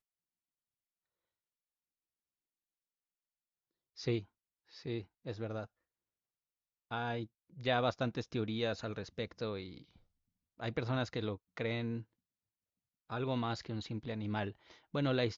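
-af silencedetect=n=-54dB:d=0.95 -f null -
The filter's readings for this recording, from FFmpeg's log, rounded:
silence_start: 0.00
silence_end: 3.97 | silence_duration: 3.97
silence_start: 5.66
silence_end: 6.91 | silence_duration: 1.25
silence_start: 12.03
silence_end: 13.10 | silence_duration: 1.07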